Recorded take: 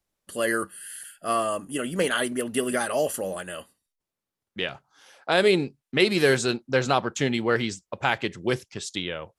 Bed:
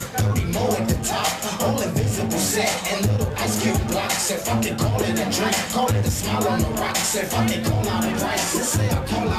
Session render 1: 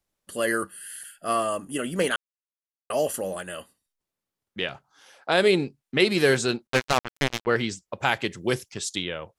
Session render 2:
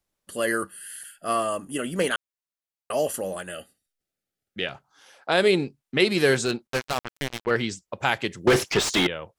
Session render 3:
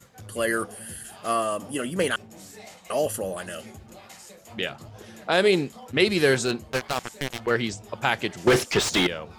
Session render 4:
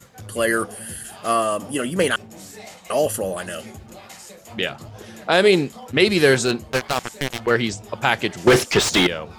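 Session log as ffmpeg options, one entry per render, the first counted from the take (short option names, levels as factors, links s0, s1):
-filter_complex "[0:a]asettb=1/sr,asplit=3[s0][s1][s2];[s0]atrim=end=6.674[s3];[s1]atrim=start=6.67:end=7.47,asetpts=PTS-STARTPTS,afade=t=in:d=0.004:c=qsin,afade=t=out:st=0.796:d=0.004:c=qsin,acrusher=bits=2:mix=0:aa=0.5[s4];[s2]atrim=start=7.466[s5];[s3][s4]acrossfade=d=0.004:c1=hsin:c2=qsin[s6];[s6][s5]acrossfade=d=0.004:c1=qsin:c2=hsin,asettb=1/sr,asplit=3[s7][s8][s9];[s7]atrim=end=8.004[s10];[s8]atrim=start=8:end=9.05,asetpts=PTS-STARTPTS,afade=t=in:d=0.004:c=qsin,afade=t=out:st=1.046:d=0.004:c=qsin,highshelf=f=7800:g=11[s11];[s9]atrim=start=9.046[s12];[s10][s11]acrossfade=d=0.004:c1=hsin:c2=qsin[s13];[s13][s12]acrossfade=d=0.004:c1=qsin:c2=hsin,asplit=3[s14][s15][s16];[s14]atrim=end=2.16,asetpts=PTS-STARTPTS,afade=t=out:st=2.156:d=0.004:c=hsin[s17];[s15]atrim=start=2.16:end=2.9,asetpts=PTS-STARTPTS,volume=0[s18];[s16]atrim=start=2.9,asetpts=PTS-STARTPTS,afade=t=in:d=0.004:c=hsin[s19];[s17][s18][s19]concat=n=3:v=0:a=1"
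-filter_complex "[0:a]asettb=1/sr,asplit=3[s0][s1][s2];[s0]atrim=end=3.514[s3];[s1]atrim=start=3.51:end=4.66,asetpts=PTS-STARTPTS,afade=t=in:d=0.004:c=qsin,afade=t=out:st=1.146:d=0.004:c=qsin,asuperstop=centerf=1000:order=8:qfactor=2.8[s4];[s2]atrim=start=4.656[s5];[s3][s4]acrossfade=d=0.004:c1=hsin:c2=qsin[s6];[s6][s5]acrossfade=d=0.004:c1=qsin:c2=hsin,asettb=1/sr,asplit=3[s7][s8][s9];[s7]atrim=end=6.454[s10];[s8]atrim=start=6.45:end=7.51,asetpts=PTS-STARTPTS,afade=t=in:d=0.004:c=qsin,afade=t=out:st=1.056:d=0.004:c=qsin,asoftclip=type=hard:threshold=0.141[s11];[s9]atrim=start=7.506[s12];[s10][s11]acrossfade=d=0.004:c1=hsin:c2=qsin[s13];[s13][s12]acrossfade=d=0.004:c1=qsin:c2=hsin,asettb=1/sr,asplit=3[s14][s15][s16];[s14]atrim=end=8.474[s17];[s15]atrim=start=8.47:end=9.07,asetpts=PTS-STARTPTS,afade=t=in:d=0.004:c=qsin,afade=t=out:st=0.596:d=0.004:c=qsin,asplit=2[s18][s19];[s19]highpass=f=720:p=1,volume=63.1,asoftclip=type=tanh:threshold=0.376[s20];[s18][s20]amix=inputs=2:normalize=0,lowpass=f=1600:p=1,volume=0.501[s21];[s16]atrim=start=9.066[s22];[s17][s21]acrossfade=d=0.004:c1=hsin:c2=qsin[s23];[s23][s22]acrossfade=d=0.004:c1=qsin:c2=hsin"
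-filter_complex "[1:a]volume=0.0668[s0];[0:a][s0]amix=inputs=2:normalize=0"
-af "volume=1.78,alimiter=limit=0.794:level=0:latency=1"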